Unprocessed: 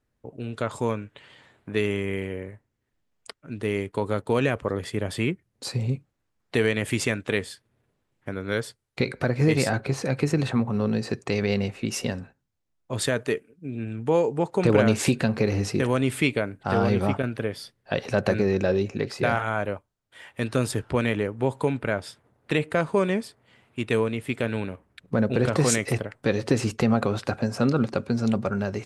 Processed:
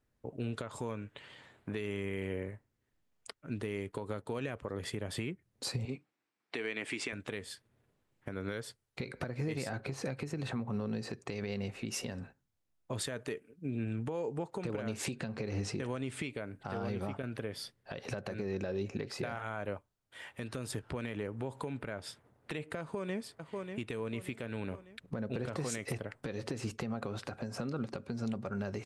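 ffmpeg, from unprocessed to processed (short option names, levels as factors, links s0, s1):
-filter_complex "[0:a]asettb=1/sr,asplit=3[s0][s1][s2];[s0]atrim=end=5.854[s3];[s1]atrim=start=5.85:end=7.13,asetpts=PTS-STARTPTS,afade=t=in:d=0.004:c=qsin,afade=t=out:st=1.276:d=0.004:c=qsin,highpass=290,equalizer=f=300:t=q:w=4:g=3,equalizer=f=550:t=q:w=4:g=-6,equalizer=f=2300:t=q:w=4:g=5,equalizer=f=6600:t=q:w=4:g=-6,lowpass=f=8100:w=0.5412,lowpass=f=8100:w=1.3066[s4];[s2]atrim=start=7.126[s5];[s3][s4]acrossfade=d=0.004:c1=hsin:c2=qsin[s6];[s6][s5]acrossfade=d=0.004:c1=qsin:c2=hsin,asettb=1/sr,asplit=3[s7][s8][s9];[s7]atrim=end=15.064[s10];[s8]atrim=start=15.06:end=16.29,asetpts=PTS-STARTPTS,afade=t=in:d=0.004:c=qsin,afade=t=out:st=1.226:d=0.004:c=qsin,lowpass=f=9300:w=0.5412,lowpass=f=9300:w=1.3066[s11];[s9]atrim=start=16.286[s12];[s10][s11]acrossfade=d=0.004:c1=hsin:c2=qsin[s13];[s13][s12]acrossfade=d=0.004:c1=qsin:c2=hsin,asettb=1/sr,asplit=3[s14][s15][s16];[s14]atrim=end=20.794[s17];[s15]atrim=start=20.79:end=21.85,asetpts=PTS-STARTPTS,afade=t=in:d=0.004:c=qsin,afade=t=out:st=1.056:d=0.004:c=qsin,acompressor=threshold=0.0178:ratio=2:attack=3.2:release=140:knee=1:detection=peak[s18];[s16]atrim=start=21.846[s19];[s17][s18]acrossfade=d=0.004:c1=hsin:c2=qsin[s20];[s20][s19]acrossfade=d=0.004:c1=qsin:c2=hsin,asplit=2[s21][s22];[s22]afade=t=in:st=22.8:d=0.01,afade=t=out:st=23.22:d=0.01,aecho=0:1:590|1180|1770|2360:0.158489|0.0713202|0.0320941|0.0144423[s23];[s21][s23]amix=inputs=2:normalize=0,acompressor=threshold=0.0398:ratio=6,alimiter=limit=0.0708:level=0:latency=1:release=184,volume=0.75"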